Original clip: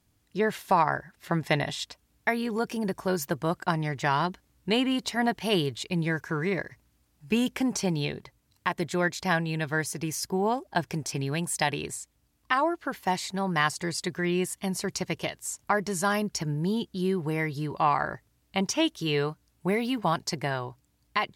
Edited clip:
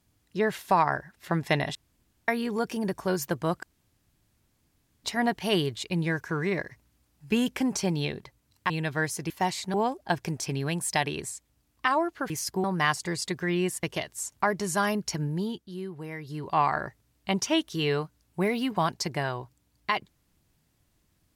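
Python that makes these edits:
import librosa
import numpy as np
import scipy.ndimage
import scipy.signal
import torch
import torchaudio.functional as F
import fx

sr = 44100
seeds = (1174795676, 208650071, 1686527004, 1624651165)

y = fx.edit(x, sr, fx.room_tone_fill(start_s=1.75, length_s=0.53),
    fx.room_tone_fill(start_s=3.63, length_s=1.41),
    fx.cut(start_s=8.7, length_s=0.76),
    fx.swap(start_s=10.06, length_s=0.34, other_s=12.96, other_length_s=0.44),
    fx.cut(start_s=14.59, length_s=0.51),
    fx.fade_down_up(start_s=16.53, length_s=1.33, db=-9.5, fade_s=0.4), tone=tone)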